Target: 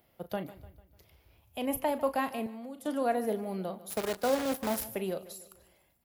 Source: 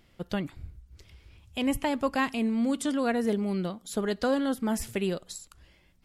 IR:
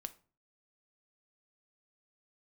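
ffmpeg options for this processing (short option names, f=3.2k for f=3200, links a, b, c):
-filter_complex "[0:a]acrossover=split=300|3000[a][b][c];[c]aexciter=amount=5.9:drive=8.5:freq=11k[d];[a][b][d]amix=inputs=3:normalize=0,equalizer=f=680:t=o:w=1.2:g=11.5,asplit=2[e][f];[f]adelay=37,volume=-12dB[g];[e][g]amix=inputs=2:normalize=0,asplit=2[h][i];[i]aecho=0:1:149|298|447|596:0.141|0.0664|0.0312|0.0147[j];[h][j]amix=inputs=2:normalize=0,asettb=1/sr,asplit=3[k][l][m];[k]atrim=end=2.464[n];[l]atrim=start=2.46:end=2.86,asetpts=PTS-STARTPTS,afade=t=in:d=0.004:c=qsin,afade=t=out:st=0.396:d=0.004:c=qsin,acrossover=split=160|400[o][p][q];[o]acompressor=threshold=-49dB:ratio=4[r];[p]acompressor=threshold=-38dB:ratio=4[s];[q]acompressor=threshold=-40dB:ratio=4[t];[r][s][t]amix=inputs=3:normalize=0[u];[m]atrim=start=2.856[v];[n][u]acrossfade=d=0.004:c1=hsin:c2=qsin[w];[w][v]acrossfade=d=0.004:c1=qsin:c2=hsin,asettb=1/sr,asplit=3[x][y][z];[x]atrim=end=3.904[aa];[y]atrim=start=3.9:end=4.84,asetpts=PTS-STARTPTS,afade=t=in:d=0.004:c=qsin,afade=t=out:st=0.936:d=0.004:c=qsin,acrusher=bits=5:dc=4:mix=0:aa=0.000001[ab];[z]atrim=start=4.836[ac];[aa][ab]acrossfade=d=0.004:c1=hsin:c2=qsin[ad];[ad][ac]acrossfade=d=0.004:c1=qsin:c2=hsin,highpass=50,volume=-9dB"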